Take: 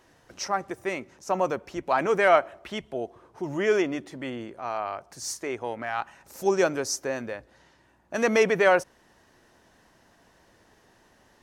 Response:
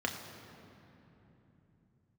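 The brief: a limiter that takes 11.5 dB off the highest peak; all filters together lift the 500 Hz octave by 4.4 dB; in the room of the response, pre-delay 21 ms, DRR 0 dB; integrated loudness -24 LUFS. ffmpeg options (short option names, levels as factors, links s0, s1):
-filter_complex "[0:a]equalizer=f=500:t=o:g=5.5,alimiter=limit=0.15:level=0:latency=1,asplit=2[s0][s1];[1:a]atrim=start_sample=2205,adelay=21[s2];[s1][s2]afir=irnorm=-1:irlink=0,volume=0.501[s3];[s0][s3]amix=inputs=2:normalize=0,volume=1.19"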